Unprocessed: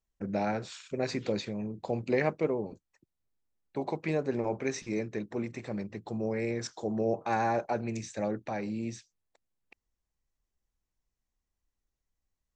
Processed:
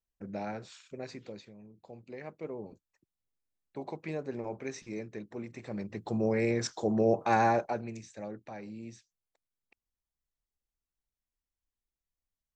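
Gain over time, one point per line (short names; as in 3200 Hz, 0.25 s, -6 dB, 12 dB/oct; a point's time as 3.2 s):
0.81 s -7 dB
1.56 s -17 dB
2.19 s -17 dB
2.66 s -6.5 dB
5.47 s -6.5 dB
6.13 s +3.5 dB
7.47 s +3.5 dB
8.03 s -9 dB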